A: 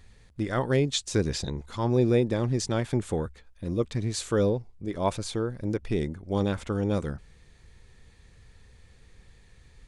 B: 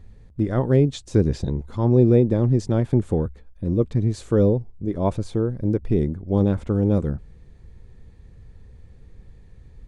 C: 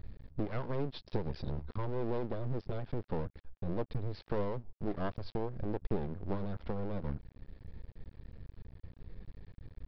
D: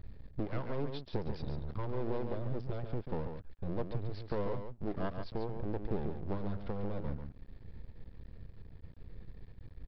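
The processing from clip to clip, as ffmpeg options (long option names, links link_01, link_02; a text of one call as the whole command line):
ffmpeg -i in.wav -af "tiltshelf=frequency=910:gain=9" out.wav
ffmpeg -i in.wav -af "acompressor=threshold=-27dB:ratio=4,aresample=11025,aeval=exprs='max(val(0),0)':channel_layout=same,aresample=44100" out.wav
ffmpeg -i in.wav -af "aecho=1:1:140:0.447,volume=-1.5dB" out.wav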